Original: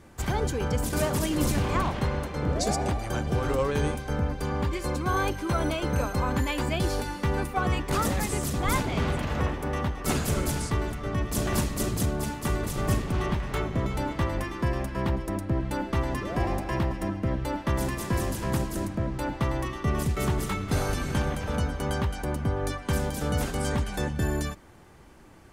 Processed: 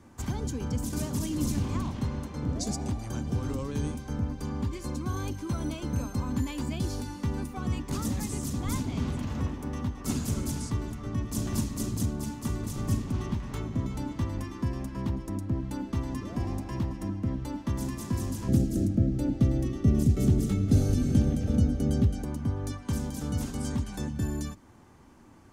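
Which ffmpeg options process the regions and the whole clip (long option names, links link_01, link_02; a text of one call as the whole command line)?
ffmpeg -i in.wav -filter_complex "[0:a]asettb=1/sr,asplit=3[link_01][link_02][link_03];[link_01]atrim=end=18.484[link_04];[link_02]atrim=start=18.48:end=22.24,asetpts=PTS-STARTPTS,afade=type=in:duration=0.004:curve=qsin,afade=type=out:start_time=3.756:duration=0.004:curve=qsin,asuperstop=centerf=1000:order=4:qfactor=3.8,lowshelf=frequency=740:width_type=q:width=1.5:gain=7[link_05];[link_03]atrim=start=22.236[link_06];[link_04][link_05]acrossfade=duration=0.004:curve1=hsin:curve2=qsin[link_07];[link_07][link_06]acrossfade=duration=0.004:curve1=qsin:curve2=hsin,equalizer=frequency=100:width_type=o:width=0.67:gain=7,equalizer=frequency=250:width_type=o:width=0.67:gain=10,equalizer=frequency=1000:width_type=o:width=0.67:gain=6,equalizer=frequency=6300:width_type=o:width=0.67:gain=5,acrossover=split=330|3000[link_08][link_09][link_10];[link_09]acompressor=threshold=-42dB:ratio=2[link_11];[link_08][link_11][link_10]amix=inputs=3:normalize=0,volume=-7dB" out.wav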